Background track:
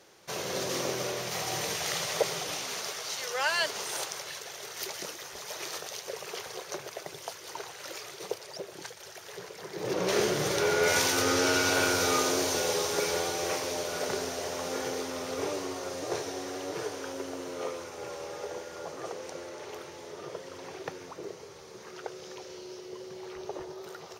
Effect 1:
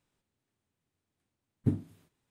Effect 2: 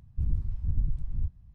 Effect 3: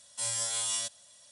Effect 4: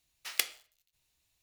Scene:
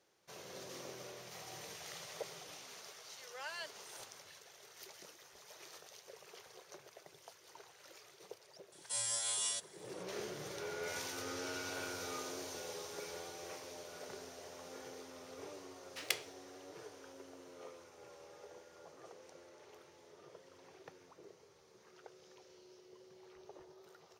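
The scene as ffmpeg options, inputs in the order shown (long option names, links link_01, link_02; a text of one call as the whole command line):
ffmpeg -i bed.wav -i cue0.wav -i cue1.wav -i cue2.wav -i cue3.wav -filter_complex "[0:a]volume=-17dB[link_01];[1:a]acompressor=threshold=-53dB:ratio=6:attack=3.2:release=140:knee=1:detection=peak[link_02];[3:a]equalizer=frequency=150:width=1.5:gain=-9[link_03];[4:a]highshelf=frequency=11000:gain=-11[link_04];[link_02]atrim=end=2.3,asetpts=PTS-STARTPTS,volume=-17dB,afade=type=in:duration=0.004:curve=hsin,afade=type=out:start_time=2.296:duration=0.004:curve=hsin,adelay=2350[link_05];[link_03]atrim=end=1.31,asetpts=PTS-STARTPTS,volume=-5dB,afade=type=in:duration=0.004:curve=hsin,afade=type=out:start_time=1.306:duration=0.004:curve=hsin,adelay=8720[link_06];[link_04]atrim=end=1.42,asetpts=PTS-STARTPTS,volume=-4.5dB,afade=type=in:duration=0.004:curve=hsin,afade=type=out:start_time=1.416:duration=0.004:curve=hsin,adelay=15710[link_07];[link_01][link_05][link_06][link_07]amix=inputs=4:normalize=0" out.wav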